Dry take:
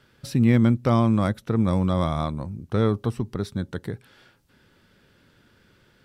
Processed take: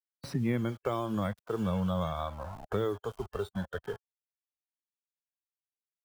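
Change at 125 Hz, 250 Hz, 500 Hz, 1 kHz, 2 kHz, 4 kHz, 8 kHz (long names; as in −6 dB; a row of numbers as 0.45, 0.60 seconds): −12.5 dB, −12.0 dB, −6.0 dB, −7.0 dB, −7.0 dB, −7.5 dB, can't be measured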